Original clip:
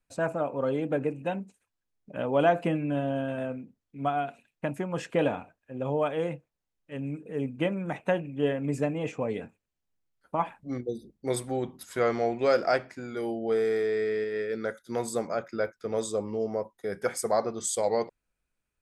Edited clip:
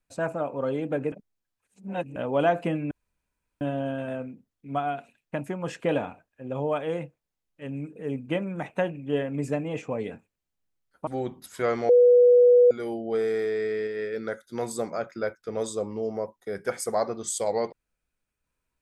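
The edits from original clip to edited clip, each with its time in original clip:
1.12–2.16 reverse
2.91 insert room tone 0.70 s
10.37–11.44 cut
12.26–13.08 bleep 489 Hz -12.5 dBFS

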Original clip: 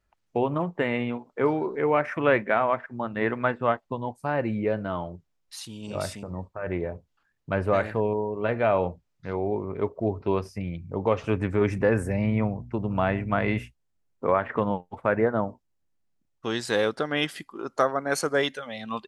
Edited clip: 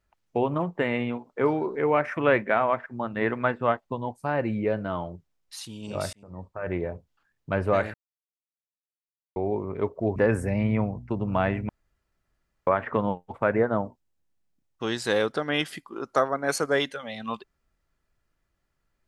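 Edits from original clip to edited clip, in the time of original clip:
6.13–6.58 fade in
7.94–9.36 mute
10.16–11.79 cut
13.32–14.3 room tone

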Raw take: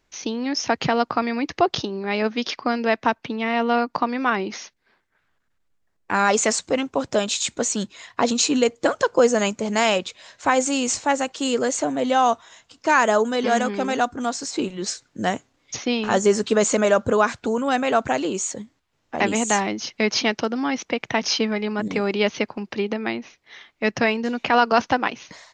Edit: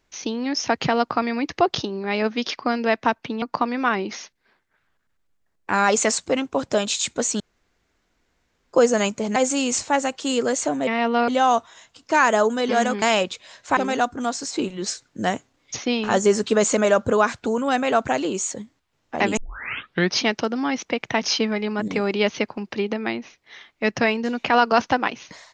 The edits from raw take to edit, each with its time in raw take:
3.42–3.83 move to 12.03
7.81–9.14 room tone
9.77–10.52 move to 13.77
19.37 tape start 0.80 s

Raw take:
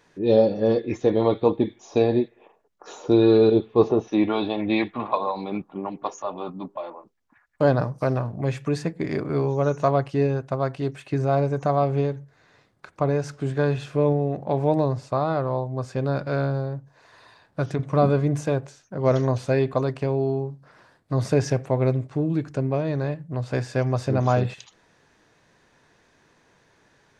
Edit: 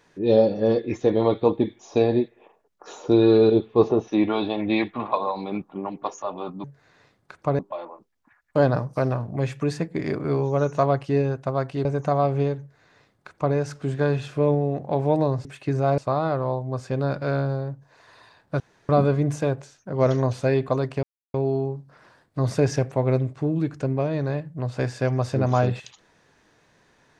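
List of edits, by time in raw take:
10.9–11.43 move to 15.03
12.18–13.13 copy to 6.64
17.65–17.94 room tone
20.08 insert silence 0.31 s

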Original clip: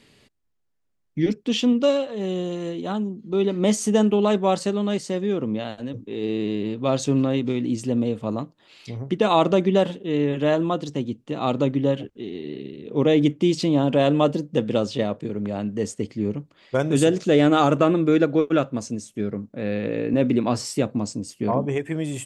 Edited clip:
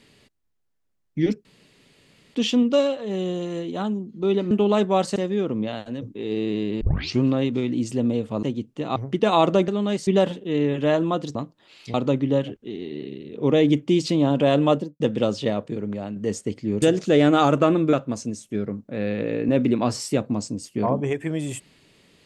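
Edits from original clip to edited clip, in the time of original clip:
1.45 insert room tone 0.90 s
3.61–4.04 cut
4.69–5.08 move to 9.66
6.73 tape start 0.41 s
8.35–8.94 swap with 10.94–11.47
14.24–14.53 studio fade out
15.31–15.69 fade out, to -6 dB
16.35–17.01 cut
18.12–18.58 cut

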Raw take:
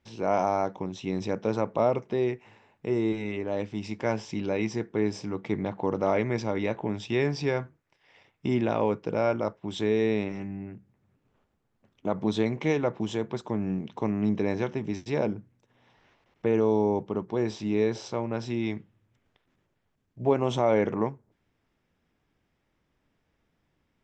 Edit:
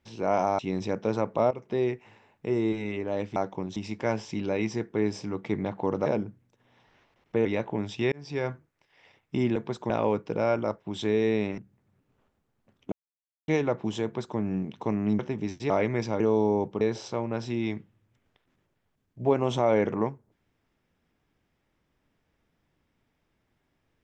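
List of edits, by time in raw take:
0.59–0.99 move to 3.76
1.91–2.16 fade in, from -16 dB
6.06–6.56 swap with 15.16–16.55
7.23–7.62 fade in
10.35–10.74 cut
12.08–12.64 mute
13.2–13.54 copy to 8.67
14.35–14.65 cut
17.16–17.81 cut

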